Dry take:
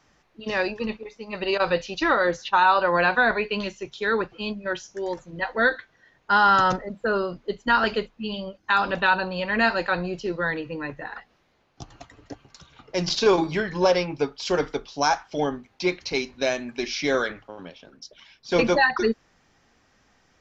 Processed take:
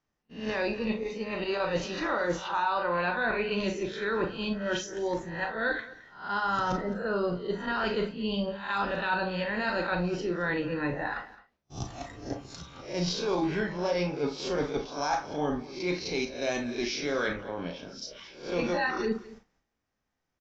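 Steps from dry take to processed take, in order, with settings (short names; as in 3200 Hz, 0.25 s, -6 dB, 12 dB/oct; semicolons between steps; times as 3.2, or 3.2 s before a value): spectral swells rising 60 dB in 0.34 s; gate -54 dBFS, range -25 dB; low shelf 430 Hz +5 dB; reverse; compressor 6:1, threshold -28 dBFS, peak gain reduction 16 dB; reverse; echo 0.215 s -18.5 dB; reverb RT60 0.15 s, pre-delay 31 ms, DRR 5 dB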